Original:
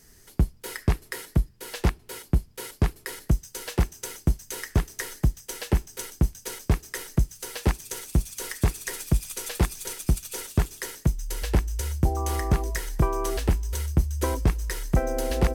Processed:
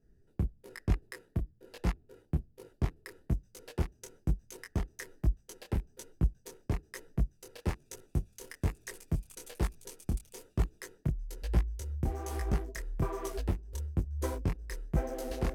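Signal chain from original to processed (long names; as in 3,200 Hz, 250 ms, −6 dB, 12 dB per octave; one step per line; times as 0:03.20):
adaptive Wiener filter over 41 samples
micro pitch shift up and down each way 39 cents
level −4.5 dB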